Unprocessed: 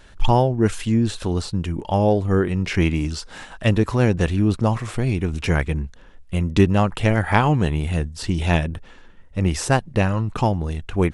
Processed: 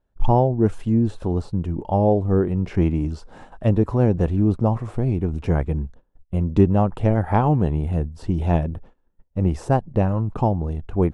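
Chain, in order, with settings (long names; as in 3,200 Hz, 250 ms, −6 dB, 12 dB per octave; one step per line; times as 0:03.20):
noise gate −39 dBFS, range −23 dB
drawn EQ curve 790 Hz 0 dB, 1,900 Hz −14 dB, 4,000 Hz −17 dB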